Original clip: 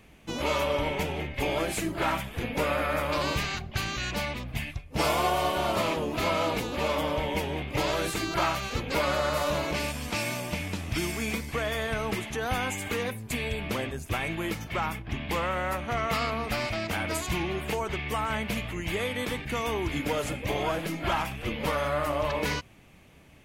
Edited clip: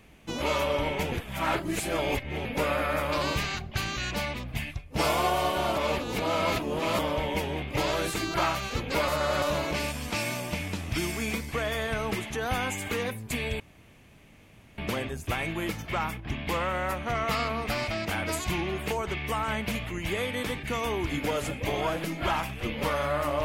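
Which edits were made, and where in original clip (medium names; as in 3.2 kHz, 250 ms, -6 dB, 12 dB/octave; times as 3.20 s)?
1.12–2.45 s: reverse
5.77–6.99 s: reverse
9.08–9.42 s: reverse
13.60 s: insert room tone 1.18 s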